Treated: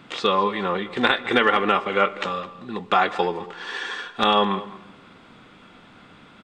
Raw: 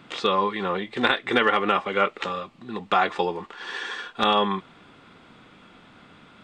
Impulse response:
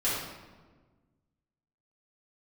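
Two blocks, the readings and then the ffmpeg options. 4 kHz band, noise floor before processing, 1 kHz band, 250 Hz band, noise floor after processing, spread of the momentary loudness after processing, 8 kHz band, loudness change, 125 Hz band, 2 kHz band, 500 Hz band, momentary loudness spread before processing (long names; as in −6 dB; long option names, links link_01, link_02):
+2.0 dB, −52 dBFS, +2.0 dB, +2.0 dB, −50 dBFS, 13 LU, can't be measured, +2.0 dB, +2.0 dB, +2.0 dB, +2.0 dB, 12 LU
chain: -filter_complex "[0:a]asplit=2[link_01][link_02];[link_02]adelay=209.9,volume=-17dB,highshelf=frequency=4000:gain=-4.72[link_03];[link_01][link_03]amix=inputs=2:normalize=0,asplit=2[link_04][link_05];[1:a]atrim=start_sample=2205[link_06];[link_05][link_06]afir=irnorm=-1:irlink=0,volume=-26dB[link_07];[link_04][link_07]amix=inputs=2:normalize=0,volume=1.5dB"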